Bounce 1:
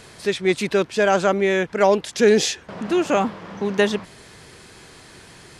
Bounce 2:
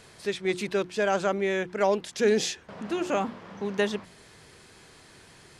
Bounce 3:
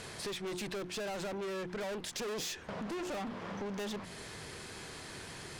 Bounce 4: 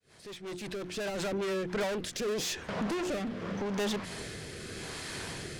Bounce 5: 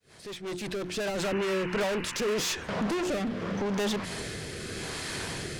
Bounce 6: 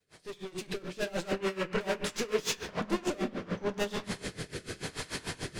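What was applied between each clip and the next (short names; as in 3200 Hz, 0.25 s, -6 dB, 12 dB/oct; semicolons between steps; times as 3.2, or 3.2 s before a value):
notches 60/120/180/240/300/360 Hz; gain -7.5 dB
tube stage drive 36 dB, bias 0.3; compressor, threshold -45 dBFS, peak gain reduction 8.5 dB; gain +7 dB
opening faded in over 1.27 s; rotary speaker horn 5.5 Hz, later 0.85 Hz, at 1.09; gain +8 dB
in parallel at -3 dB: limiter -29.5 dBFS, peak gain reduction 9 dB; on the sum: painted sound noise, 1.23–2.56, 860–3000 Hz -41 dBFS
reverb RT60 1.1 s, pre-delay 7 ms, DRR 2.5 dB; dB-linear tremolo 6.8 Hz, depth 21 dB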